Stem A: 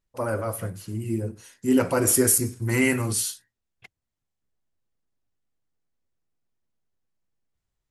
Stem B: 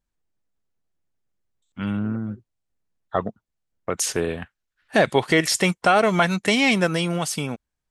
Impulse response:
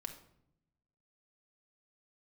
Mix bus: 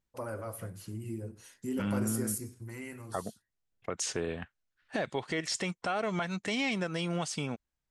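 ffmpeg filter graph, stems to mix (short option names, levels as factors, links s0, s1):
-filter_complex "[0:a]acompressor=threshold=0.0178:ratio=2,volume=0.562,afade=t=out:st=2.32:d=0.42:silence=0.421697[s0];[1:a]lowpass=f=8300:w=0.5412,lowpass=f=8300:w=1.3066,volume=0.531[s1];[s0][s1]amix=inputs=2:normalize=0,alimiter=limit=0.0891:level=0:latency=1:release=343"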